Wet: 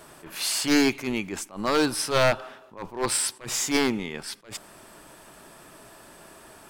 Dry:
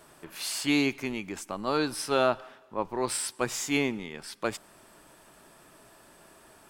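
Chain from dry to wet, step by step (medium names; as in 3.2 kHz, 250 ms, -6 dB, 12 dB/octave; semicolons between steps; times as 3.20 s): one-sided wavefolder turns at -21.5 dBFS; attacks held to a fixed rise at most 170 dB/s; trim +6.5 dB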